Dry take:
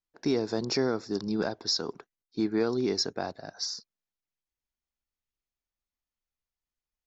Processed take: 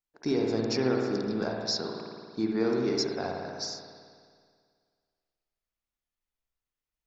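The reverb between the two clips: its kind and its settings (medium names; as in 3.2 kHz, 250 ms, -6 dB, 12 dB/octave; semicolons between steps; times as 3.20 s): spring tank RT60 2 s, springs 54 ms, chirp 65 ms, DRR -1 dB; trim -2.5 dB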